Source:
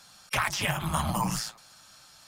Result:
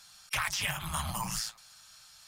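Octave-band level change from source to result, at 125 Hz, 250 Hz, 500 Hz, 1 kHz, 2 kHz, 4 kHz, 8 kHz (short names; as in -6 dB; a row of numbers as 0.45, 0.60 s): -8.0, -11.0, -11.0, -6.5, -3.0, -1.5, -1.0 dB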